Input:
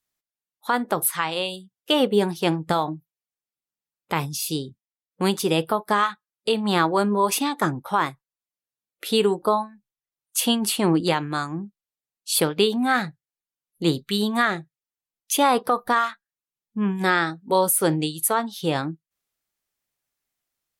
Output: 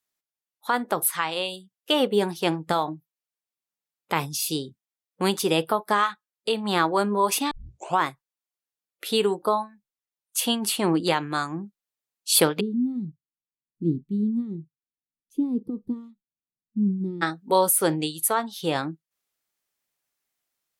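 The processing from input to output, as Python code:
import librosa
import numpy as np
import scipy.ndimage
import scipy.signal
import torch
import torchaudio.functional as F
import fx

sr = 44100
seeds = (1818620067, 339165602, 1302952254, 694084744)

y = fx.cheby2_lowpass(x, sr, hz=600.0, order=4, stop_db=40, at=(12.59, 17.21), fade=0.02)
y = fx.edit(y, sr, fx.tape_start(start_s=7.51, length_s=0.49), tone=tone)
y = fx.low_shelf(y, sr, hz=140.0, db=-9.5)
y = fx.rider(y, sr, range_db=10, speed_s=2.0)
y = y * 10.0 ** (-1.0 / 20.0)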